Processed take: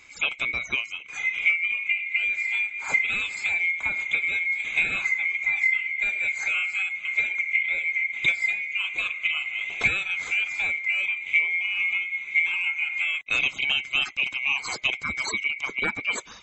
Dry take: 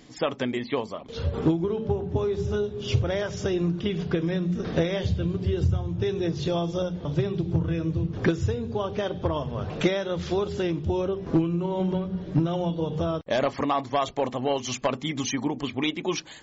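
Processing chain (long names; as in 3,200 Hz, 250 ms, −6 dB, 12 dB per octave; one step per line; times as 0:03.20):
neighbouring bands swapped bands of 2,000 Hz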